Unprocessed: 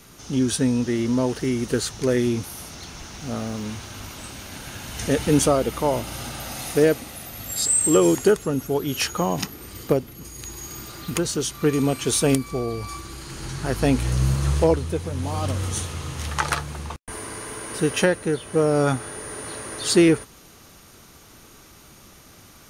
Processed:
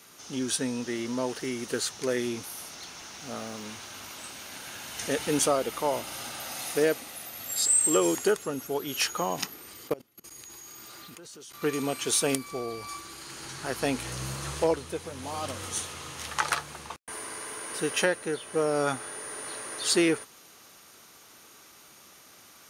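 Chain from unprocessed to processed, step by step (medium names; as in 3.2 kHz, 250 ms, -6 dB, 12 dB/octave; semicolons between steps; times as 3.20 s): high-pass 590 Hz 6 dB/octave; 9.60–11.62 s: level held to a coarse grid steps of 22 dB; trim -2.5 dB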